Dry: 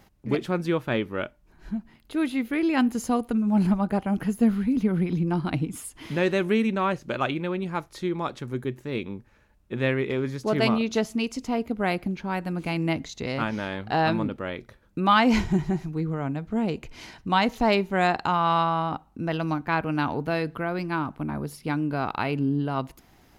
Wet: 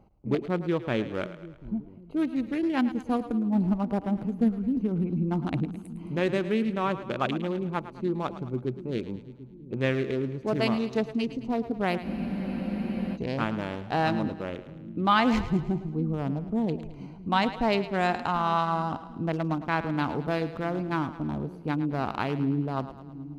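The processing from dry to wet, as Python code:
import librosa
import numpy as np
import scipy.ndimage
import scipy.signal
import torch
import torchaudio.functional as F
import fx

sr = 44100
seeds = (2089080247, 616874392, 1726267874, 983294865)

p1 = fx.wiener(x, sr, points=25)
p2 = fx.rider(p1, sr, range_db=3, speed_s=0.5)
p3 = p1 + (p2 * librosa.db_to_amplitude(0.0))
p4 = fx.echo_split(p3, sr, split_hz=320.0, low_ms=741, high_ms=108, feedback_pct=52, wet_db=-13)
p5 = fx.spec_freeze(p4, sr, seeds[0], at_s=12.06, hold_s=1.09)
y = p5 * librosa.db_to_amplitude(-8.0)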